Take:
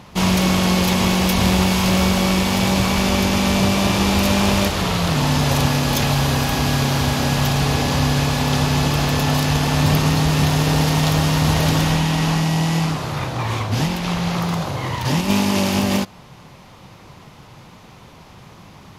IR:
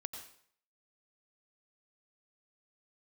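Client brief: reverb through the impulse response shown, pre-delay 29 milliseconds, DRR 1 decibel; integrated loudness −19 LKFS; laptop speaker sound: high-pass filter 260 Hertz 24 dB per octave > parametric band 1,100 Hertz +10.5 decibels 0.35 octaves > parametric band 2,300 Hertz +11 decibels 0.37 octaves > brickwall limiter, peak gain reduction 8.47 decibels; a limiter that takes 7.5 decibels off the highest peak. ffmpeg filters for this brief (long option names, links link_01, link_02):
-filter_complex "[0:a]alimiter=limit=-12.5dB:level=0:latency=1,asplit=2[link_01][link_02];[1:a]atrim=start_sample=2205,adelay=29[link_03];[link_02][link_03]afir=irnorm=-1:irlink=0,volume=1dB[link_04];[link_01][link_04]amix=inputs=2:normalize=0,highpass=frequency=260:width=0.5412,highpass=frequency=260:width=1.3066,equalizer=frequency=1100:width_type=o:width=0.35:gain=10.5,equalizer=frequency=2300:width_type=o:width=0.37:gain=11,volume=3.5dB,alimiter=limit=-11dB:level=0:latency=1"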